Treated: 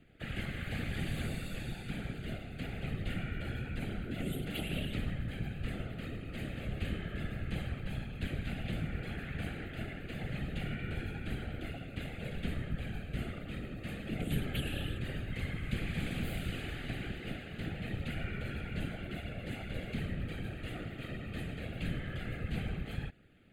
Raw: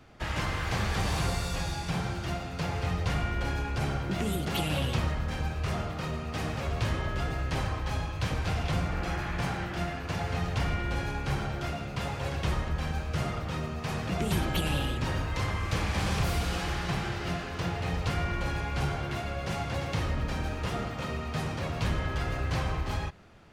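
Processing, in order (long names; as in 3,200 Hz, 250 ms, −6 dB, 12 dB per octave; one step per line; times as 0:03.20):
random phases in short frames
phaser with its sweep stopped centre 2,400 Hz, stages 4
level −6 dB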